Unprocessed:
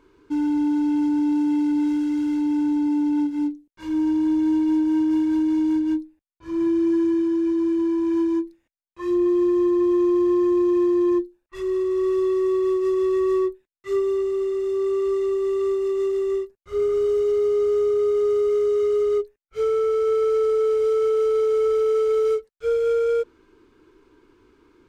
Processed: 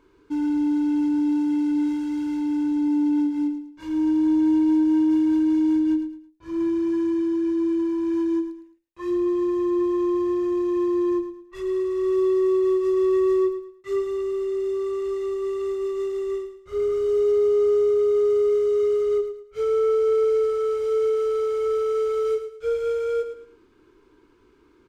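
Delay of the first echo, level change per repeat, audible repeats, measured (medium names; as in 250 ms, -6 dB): 109 ms, -10.0 dB, 3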